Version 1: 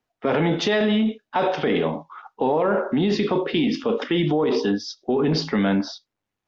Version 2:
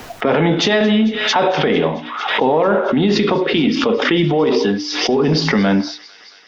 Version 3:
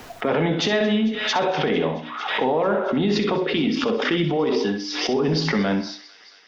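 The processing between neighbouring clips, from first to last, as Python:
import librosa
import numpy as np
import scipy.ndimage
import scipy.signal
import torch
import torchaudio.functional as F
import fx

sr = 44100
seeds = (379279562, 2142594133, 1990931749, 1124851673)

y1 = fx.hum_notches(x, sr, base_hz=60, count=7)
y1 = fx.echo_wet_highpass(y1, sr, ms=224, feedback_pct=83, hz=1800.0, wet_db=-18.0)
y1 = fx.pre_swell(y1, sr, db_per_s=45.0)
y1 = F.gain(torch.from_numpy(y1), 6.0).numpy()
y2 = fx.echo_feedback(y1, sr, ms=63, feedback_pct=26, wet_db=-11)
y2 = F.gain(torch.from_numpy(y2), -6.5).numpy()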